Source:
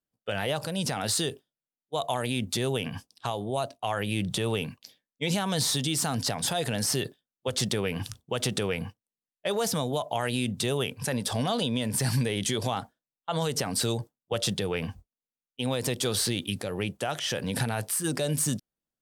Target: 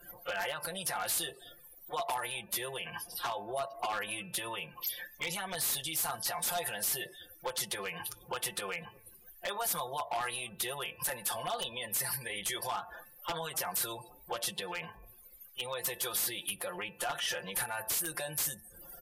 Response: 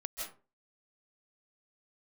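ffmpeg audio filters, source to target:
-filter_complex "[0:a]aeval=exprs='val(0)+0.5*0.0075*sgn(val(0))':channel_layout=same,acompressor=threshold=-38dB:ratio=3,aecho=1:1:5.7:0.97,asplit=5[link_01][link_02][link_03][link_04][link_05];[link_02]adelay=251,afreqshift=-62,volume=-21.5dB[link_06];[link_03]adelay=502,afreqshift=-124,volume=-27.3dB[link_07];[link_04]adelay=753,afreqshift=-186,volume=-33.2dB[link_08];[link_05]adelay=1004,afreqshift=-248,volume=-39dB[link_09];[link_01][link_06][link_07][link_08][link_09]amix=inputs=5:normalize=0,afftdn=noise_reduction=31:noise_floor=-47,equalizer=frequency=125:width_type=o:width=1:gain=-4,equalizer=frequency=250:width_type=o:width=1:gain=-10,equalizer=frequency=1000:width_type=o:width=1:gain=10,equalizer=frequency=2000:width_type=o:width=1:gain=8,equalizer=frequency=8000:width_type=o:width=1:gain=5,aexciter=amount=15.9:drive=5.7:freq=11000,bass=frequency=250:gain=-5,treble=frequency=4000:gain=1,bandreject=frequency=219.8:width_type=h:width=4,bandreject=frequency=439.6:width_type=h:width=4,bandreject=frequency=659.4:width_type=h:width=4,bandreject=frequency=879.2:width_type=h:width=4,bandreject=frequency=1099:width_type=h:width=4,bandreject=frequency=1318.8:width_type=h:width=4,bandreject=frequency=1538.6:width_type=h:width=4,bandreject=frequency=1758.4:width_type=h:width=4,bandreject=frequency=1978.2:width_type=h:width=4,bandreject=frequency=2198:width_type=h:width=4,bandreject=frequency=2417.8:width_type=h:width=4,bandreject=frequency=2637.6:width_type=h:width=4,aeval=exprs='0.0668*(abs(mod(val(0)/0.0668+3,4)-2)-1)':channel_layout=same,alimiter=level_in=3dB:limit=-24dB:level=0:latency=1:release=334,volume=-3dB" -ar 44100 -c:a libvorbis -b:a 48k

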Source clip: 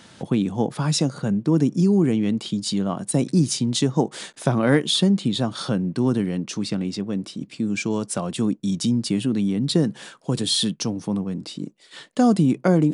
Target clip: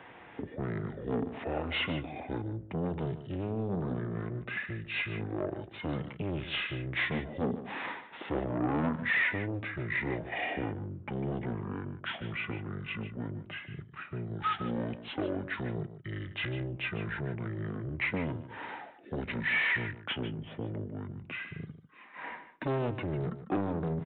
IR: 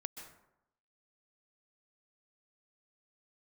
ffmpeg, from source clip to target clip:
-filter_complex "[0:a]asetrate=23726,aresample=44100,aresample=8000,asoftclip=type=tanh:threshold=-22dB,aresample=44100,acrossover=split=200 2800:gain=0.141 1 0.126[link_01][link_02][link_03];[link_01][link_02][link_03]amix=inputs=3:normalize=0,aecho=1:1:149:0.237"

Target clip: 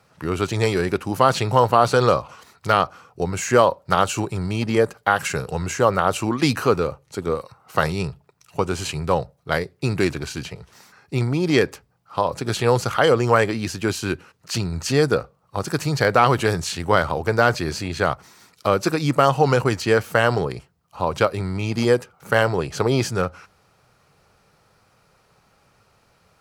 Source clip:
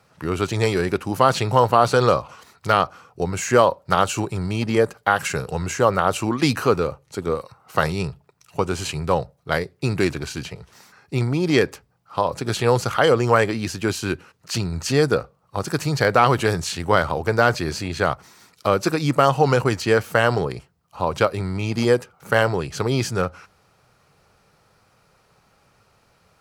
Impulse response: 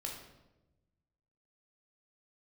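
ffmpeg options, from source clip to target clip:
-filter_complex "[0:a]asettb=1/sr,asplit=3[link_01][link_02][link_03];[link_01]atrim=end=22.584[link_04];[link_02]atrim=start=22.58:end=23.08,asetpts=PTS-STARTPTS,afade=type=in:duration=0.004:curve=qsin,afade=type=out:start_time=0.496:duration=0.004:curve=qsin,equalizer=frequency=640:width_type=o:width=1.8:gain=5[link_05];[link_03]atrim=start=23.076[link_06];[link_04][link_05]acrossfade=duration=0.004:curve1=hsin:curve2=qsin[link_07];[link_07][link_06]acrossfade=duration=0.004:curve1=qsin:curve2=hsin"

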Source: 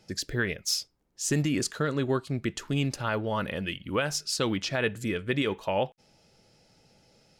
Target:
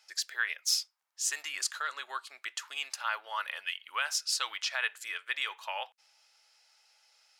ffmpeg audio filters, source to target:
ffmpeg -i in.wav -af "highpass=frequency=960:width=0.5412,highpass=frequency=960:width=1.3066" out.wav

